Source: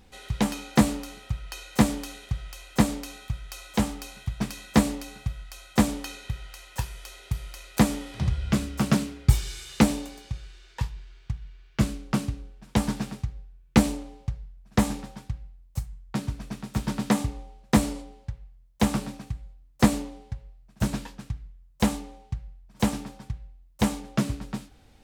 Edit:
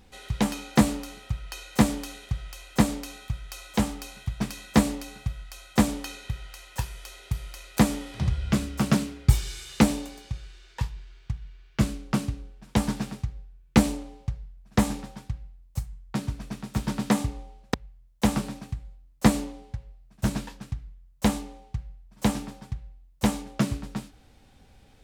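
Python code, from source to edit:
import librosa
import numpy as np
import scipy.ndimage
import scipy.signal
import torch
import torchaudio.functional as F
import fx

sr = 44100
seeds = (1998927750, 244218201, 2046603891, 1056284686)

y = fx.edit(x, sr, fx.cut(start_s=17.74, length_s=0.58), tone=tone)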